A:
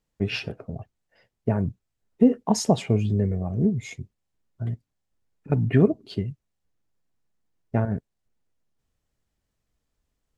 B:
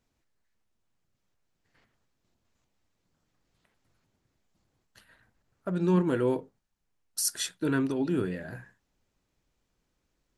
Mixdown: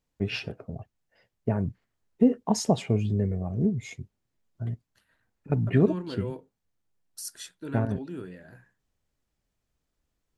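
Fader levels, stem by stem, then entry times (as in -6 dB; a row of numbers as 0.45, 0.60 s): -3.0, -9.5 dB; 0.00, 0.00 s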